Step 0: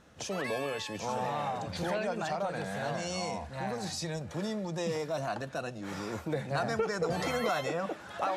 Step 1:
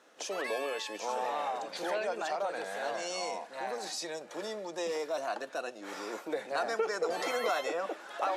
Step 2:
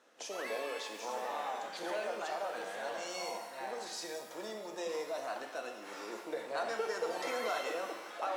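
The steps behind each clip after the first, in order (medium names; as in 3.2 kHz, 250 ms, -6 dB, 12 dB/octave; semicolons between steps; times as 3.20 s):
high-pass 320 Hz 24 dB/octave
pitch-shifted reverb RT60 1.1 s, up +12 st, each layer -8 dB, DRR 4.5 dB; trim -5.5 dB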